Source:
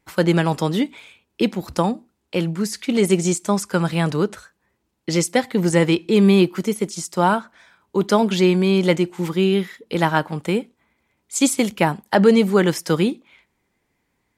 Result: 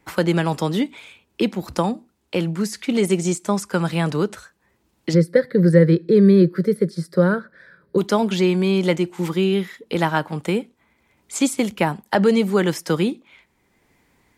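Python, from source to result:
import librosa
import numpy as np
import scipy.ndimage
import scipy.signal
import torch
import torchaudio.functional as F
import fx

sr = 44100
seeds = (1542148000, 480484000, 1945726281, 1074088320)

y = fx.curve_eq(x, sr, hz=(100.0, 160.0, 240.0, 540.0, 770.0, 1700.0, 2800.0, 4500.0, 6700.0, 9600.0), db=(0, 12, -1, 10, -18, 6, -21, -4, -27, -13), at=(5.13, 7.97), fade=0.02)
y = fx.band_squash(y, sr, depth_pct=40)
y = F.gain(torch.from_numpy(y), -2.0).numpy()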